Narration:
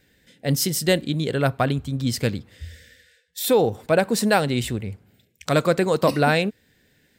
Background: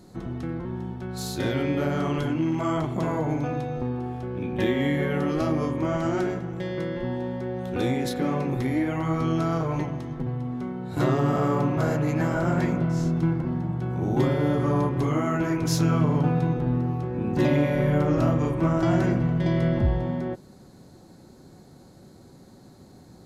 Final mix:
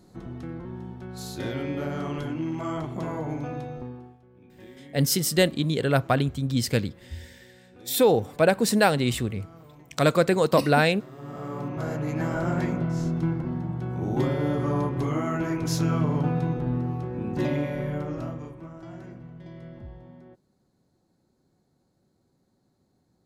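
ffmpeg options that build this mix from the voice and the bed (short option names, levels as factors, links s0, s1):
-filter_complex "[0:a]adelay=4500,volume=0.891[s0];[1:a]volume=6.31,afade=t=out:st=3.66:d=0.52:silence=0.11885,afade=t=in:st=11.11:d=1.23:silence=0.0891251,afade=t=out:st=17.03:d=1.64:silence=0.133352[s1];[s0][s1]amix=inputs=2:normalize=0"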